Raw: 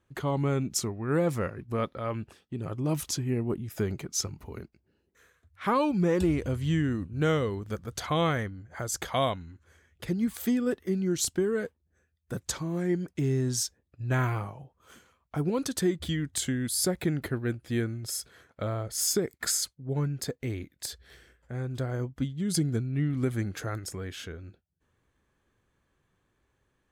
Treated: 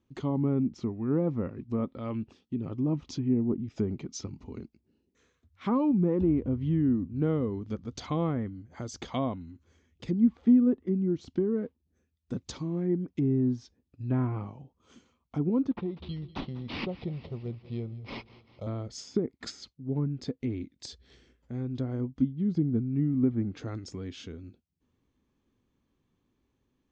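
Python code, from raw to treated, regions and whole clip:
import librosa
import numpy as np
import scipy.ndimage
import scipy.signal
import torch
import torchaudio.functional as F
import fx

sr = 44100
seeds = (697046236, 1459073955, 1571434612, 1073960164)

y = fx.chain(x, sr, fx.fixed_phaser(hz=670.0, stages=4),
    fx.echo_feedback(ms=194, feedback_pct=58, wet_db=-18.0),
    fx.resample_linear(factor=6), at=(15.71, 18.67))
y = fx.graphic_eq_15(y, sr, hz=(250, 630, 1600), db=(10, -4, -10))
y = fx.env_lowpass_down(y, sr, base_hz=1300.0, full_db=-22.0)
y = scipy.signal.sosfilt(scipy.signal.butter(6, 6700.0, 'lowpass', fs=sr, output='sos'), y)
y = F.gain(torch.from_numpy(y), -3.0).numpy()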